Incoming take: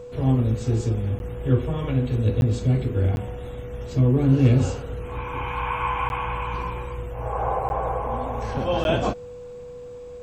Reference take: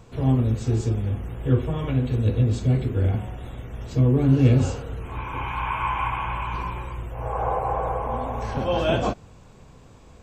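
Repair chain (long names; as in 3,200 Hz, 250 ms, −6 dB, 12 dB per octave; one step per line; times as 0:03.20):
clipped peaks rebuilt −7.5 dBFS
notch filter 490 Hz, Q 30
repair the gap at 0:01.19/0:02.41/0:03.16/0:06.09/0:07.69/0:08.84, 11 ms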